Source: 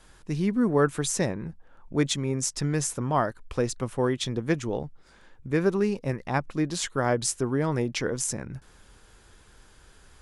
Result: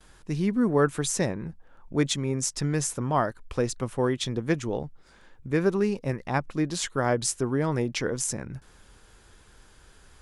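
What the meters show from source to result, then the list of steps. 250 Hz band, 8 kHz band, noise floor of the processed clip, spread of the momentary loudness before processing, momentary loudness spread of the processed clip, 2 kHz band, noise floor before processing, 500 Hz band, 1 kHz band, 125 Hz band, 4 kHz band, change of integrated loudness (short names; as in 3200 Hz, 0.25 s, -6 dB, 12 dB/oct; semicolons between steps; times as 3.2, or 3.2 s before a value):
0.0 dB, 0.0 dB, -55 dBFS, 10 LU, 10 LU, 0.0 dB, -55 dBFS, 0.0 dB, 0.0 dB, 0.0 dB, 0.0 dB, 0.0 dB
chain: gate with hold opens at -48 dBFS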